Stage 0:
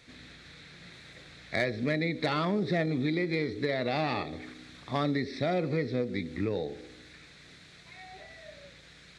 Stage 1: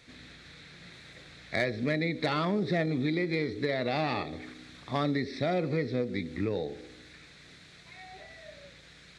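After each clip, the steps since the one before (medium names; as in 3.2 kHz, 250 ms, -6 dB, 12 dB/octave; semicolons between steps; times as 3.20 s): no audible change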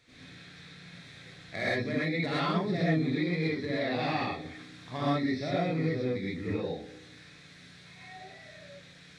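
gated-style reverb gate 150 ms rising, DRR -8 dB; trim -8.5 dB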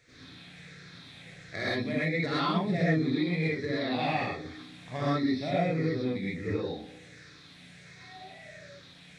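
drifting ripple filter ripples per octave 0.53, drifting -1.4 Hz, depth 7 dB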